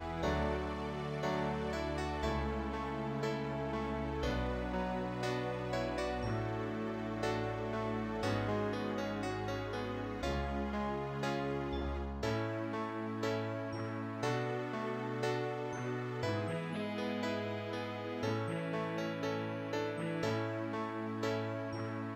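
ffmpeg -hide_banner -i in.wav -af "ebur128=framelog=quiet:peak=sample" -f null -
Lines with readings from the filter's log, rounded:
Integrated loudness:
  I:         -37.7 LUFS
  Threshold: -47.7 LUFS
Loudness range:
  LRA:         0.9 LU
  Threshold: -57.7 LUFS
  LRA low:   -38.1 LUFS
  LRA high:  -37.2 LUFS
Sample peak:
  Peak:      -21.7 dBFS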